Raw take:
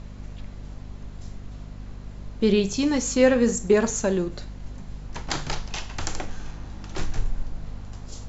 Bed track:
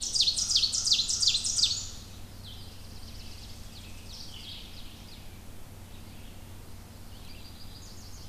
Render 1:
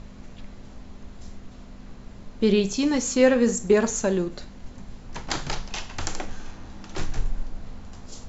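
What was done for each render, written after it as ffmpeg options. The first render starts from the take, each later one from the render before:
-af "bandreject=f=50:t=h:w=6,bandreject=f=100:t=h:w=6,bandreject=f=150:t=h:w=6"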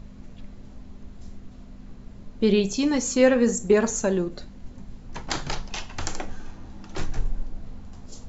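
-af "afftdn=nr=6:nf=-44"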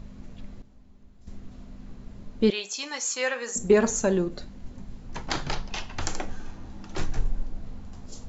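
-filter_complex "[0:a]asettb=1/sr,asplit=3[s0][s1][s2];[s0]atrim=end=2.504[s3];[s1]atrim=start=2.5:end=3.56,asetpts=PTS-STARTPTS,afade=t=in:d=0.004:c=qsin,afade=t=out:st=1.056:d=0.004:c=qsin,highpass=1000[s4];[s2]atrim=start=3.556[s5];[s3][s4]acrossfade=d=0.004:c1=hsin:c2=qsin[s6];[s6][s5]acrossfade=d=0.004:c1=qsin:c2=hsin,asettb=1/sr,asplit=3[s7][s8][s9];[s7]atrim=end=5.294[s10];[s8]atrim=start=5.29:end=6.02,asetpts=PTS-STARTPTS,afade=t=in:d=0.004:c=qsin,afade=t=out:st=0.726:d=0.004:c=qsin,lowpass=5900[s11];[s9]atrim=start=6.016[s12];[s10][s11]acrossfade=d=0.004:c1=hsin:c2=qsin[s13];[s13][s12]acrossfade=d=0.004:c1=qsin:c2=hsin,asplit=3[s14][s15][s16];[s14]atrim=end=0.622[s17];[s15]atrim=start=0.618:end=1.272,asetpts=PTS-STARTPTS,volume=0.266[s18];[s16]atrim=start=1.268[s19];[s17][s18]acrossfade=d=0.004:c1=hsin:c2=hsin[s20];[s20][s19]acrossfade=d=0.004:c1=hsin:c2=hsin"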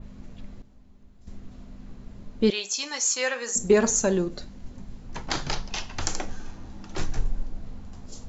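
-af "adynamicequalizer=threshold=0.00562:dfrequency=5900:dqfactor=1.1:tfrequency=5900:tqfactor=1.1:attack=5:release=100:ratio=0.375:range=3:mode=boostabove:tftype=bell"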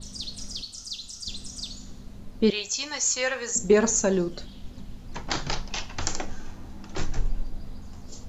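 -filter_complex "[1:a]volume=0.266[s0];[0:a][s0]amix=inputs=2:normalize=0"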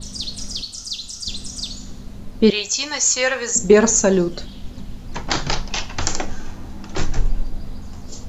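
-af "volume=2.37,alimiter=limit=0.891:level=0:latency=1"

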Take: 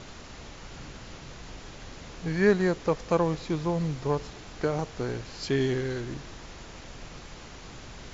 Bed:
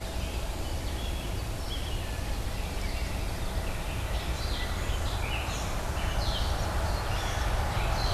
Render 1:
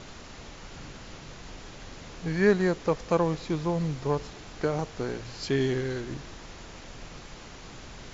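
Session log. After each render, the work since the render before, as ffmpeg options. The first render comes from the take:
-af "bandreject=f=60:t=h:w=4,bandreject=f=120:t=h:w=4"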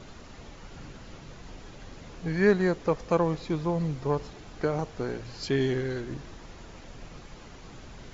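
-af "afftdn=nr=6:nf=-46"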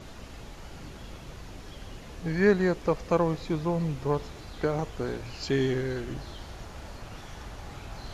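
-filter_complex "[1:a]volume=0.188[s0];[0:a][s0]amix=inputs=2:normalize=0"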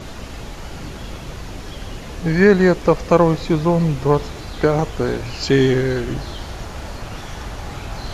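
-af "volume=3.76,alimiter=limit=0.794:level=0:latency=1"

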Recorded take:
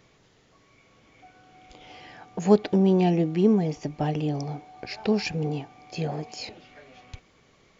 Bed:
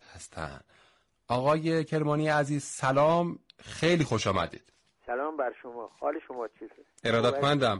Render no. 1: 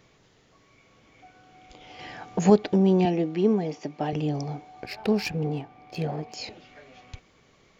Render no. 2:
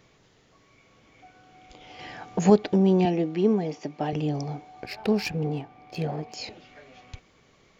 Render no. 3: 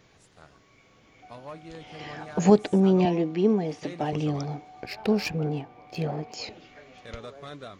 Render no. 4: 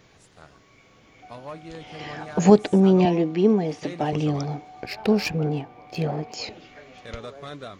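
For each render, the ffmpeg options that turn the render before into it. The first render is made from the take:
-filter_complex "[0:a]asettb=1/sr,asplit=3[s0][s1][s2];[s0]atrim=end=3.054[s3];[s1]atrim=start=3.05:end=4.13,asetpts=PTS-STARTPTS,afade=t=in:d=0.004:c=qsin,afade=t=out:st=1.076:d=0.004:c=qsin,highpass=220,lowpass=6100[s4];[s2]atrim=start=4.126[s5];[s3][s4]acrossfade=d=0.004:c1=hsin:c2=qsin[s6];[s6][s5]acrossfade=d=0.004:c1=qsin:c2=hsin,asettb=1/sr,asplit=3[s7][s8][s9];[s7]atrim=end=4.864[s10];[s8]atrim=start=4.86:end=6.34,asetpts=PTS-STARTPTS,afade=t=in:d=0.004:c=qsin,afade=t=out:st=1.476:d=0.004:c=qsin,adynamicsmooth=sensitivity=8:basefreq=3200[s11];[s9]atrim=start=6.336[s12];[s10][s11]acrossfade=d=0.004:c1=hsin:c2=qsin[s13];[s13][s12]acrossfade=d=0.004:c1=qsin:c2=hsin,asplit=3[s14][s15][s16];[s14]atrim=end=1.992[s17];[s15]atrim=start=1.988:end=2.502,asetpts=PTS-STARTPTS,volume=1.88[s18];[s16]atrim=start=2.498[s19];[s17][s18]acrossfade=d=0.004:c1=hsin:c2=hsin[s20];[s20][s19]acrossfade=d=0.004:c1=hsin:c2=hsin"
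-af anull
-filter_complex "[1:a]volume=0.15[s0];[0:a][s0]amix=inputs=2:normalize=0"
-af "volume=1.5"

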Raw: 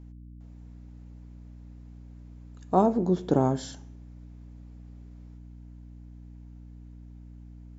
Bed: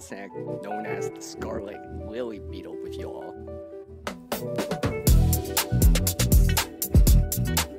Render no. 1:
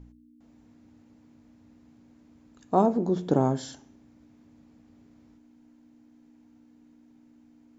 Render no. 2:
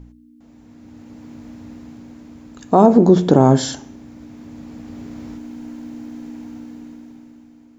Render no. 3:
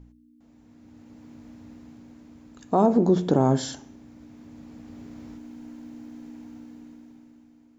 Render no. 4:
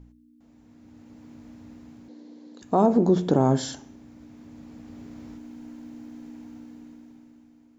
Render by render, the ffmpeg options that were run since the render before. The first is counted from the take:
-af "bandreject=f=60:t=h:w=4,bandreject=f=120:t=h:w=4,bandreject=f=180:t=h:w=4"
-af "dynaudnorm=f=220:g=11:m=6.31,alimiter=level_in=2.51:limit=0.891:release=50:level=0:latency=1"
-af "volume=0.376"
-filter_complex "[0:a]asettb=1/sr,asplit=3[s0][s1][s2];[s0]atrim=end=2.084[s3];[s1]atrim=start=2.08:end=2.62,asetpts=PTS-STARTPTS,afade=t=in:d=0.004:c=qsin,afade=t=out:st=0.536:d=0.004:c=qsin,highpass=f=210:w=0.5412,highpass=f=210:w=1.3066,equalizer=f=300:t=q:w=4:g=5,equalizer=f=490:t=q:w=4:g=10,equalizer=f=1300:t=q:w=4:g=-8,equalizer=f=2500:t=q:w=4:g=-6,equalizer=f=4200:t=q:w=4:g=9,lowpass=f=6800:w=0.5412,lowpass=f=6800:w=1.3066[s4];[s2]atrim=start=2.616[s5];[s3][s4]acrossfade=d=0.004:c1=hsin:c2=qsin[s6];[s6][s5]acrossfade=d=0.004:c1=qsin:c2=hsin"

